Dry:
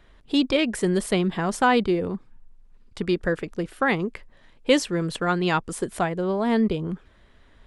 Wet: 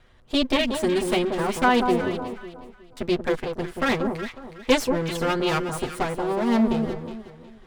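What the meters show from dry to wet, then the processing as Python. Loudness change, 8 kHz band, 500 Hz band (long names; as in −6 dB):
0.0 dB, −1.0 dB, +1.0 dB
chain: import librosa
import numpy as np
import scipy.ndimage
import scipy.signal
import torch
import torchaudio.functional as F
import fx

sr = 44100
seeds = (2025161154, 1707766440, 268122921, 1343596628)

y = fx.lower_of_two(x, sr, delay_ms=8.0)
y = fx.echo_alternate(y, sr, ms=183, hz=1200.0, feedback_pct=52, wet_db=-5)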